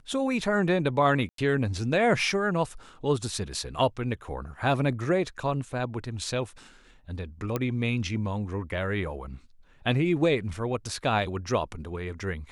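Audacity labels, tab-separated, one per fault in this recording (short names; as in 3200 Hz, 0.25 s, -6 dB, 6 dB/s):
1.290000	1.380000	gap 93 ms
7.560000	7.560000	pop -14 dBFS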